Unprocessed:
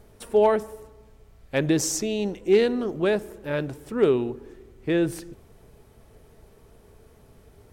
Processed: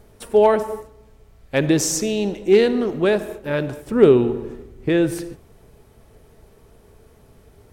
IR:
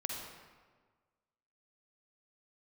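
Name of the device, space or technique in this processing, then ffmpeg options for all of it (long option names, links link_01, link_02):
keyed gated reverb: -filter_complex "[0:a]asettb=1/sr,asplit=3[link_01][link_02][link_03];[link_01]atrim=end=3.874[link_04];[link_02]atrim=start=3.87:end=4.89,asetpts=PTS-STARTPTS,afade=type=in:duration=0.004:curve=qsin,afade=type=out:start_time=1.016:duration=0.004:curve=qsin,lowshelf=frequency=470:gain=5.5[link_05];[link_03]atrim=start=4.886[link_06];[link_04][link_05]acrossfade=duration=0.004:curve1=hsin:curve2=qsin[link_07];[link_07][link_06]acrossfade=duration=0.004:curve1=qsin:curve2=hsin,asplit=3[link_08][link_09][link_10];[1:a]atrim=start_sample=2205[link_11];[link_09][link_11]afir=irnorm=-1:irlink=0[link_12];[link_10]apad=whole_len=340868[link_13];[link_12][link_13]sidechaingate=range=-33dB:threshold=-41dB:ratio=16:detection=peak,volume=-10dB[link_14];[link_08][link_14]amix=inputs=2:normalize=0,volume=2.5dB"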